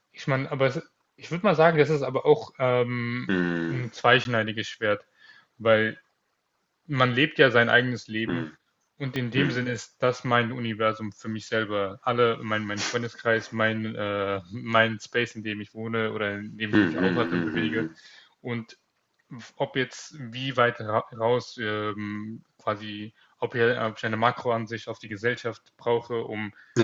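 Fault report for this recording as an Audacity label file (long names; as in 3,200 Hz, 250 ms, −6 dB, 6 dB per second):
4.240000	4.250000	drop-out
9.160000	9.160000	click −16 dBFS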